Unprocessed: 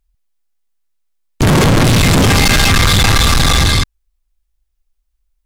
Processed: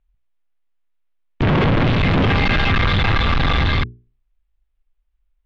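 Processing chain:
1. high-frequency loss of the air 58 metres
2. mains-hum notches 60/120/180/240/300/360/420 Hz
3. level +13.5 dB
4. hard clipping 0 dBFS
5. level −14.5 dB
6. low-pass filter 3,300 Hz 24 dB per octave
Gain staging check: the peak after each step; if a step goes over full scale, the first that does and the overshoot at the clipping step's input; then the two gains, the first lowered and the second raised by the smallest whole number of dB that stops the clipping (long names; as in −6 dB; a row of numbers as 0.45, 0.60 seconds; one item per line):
−8.5, −4.0, +9.5, 0.0, −14.5, −12.0 dBFS
step 3, 9.5 dB
step 3 +3.5 dB, step 5 −4.5 dB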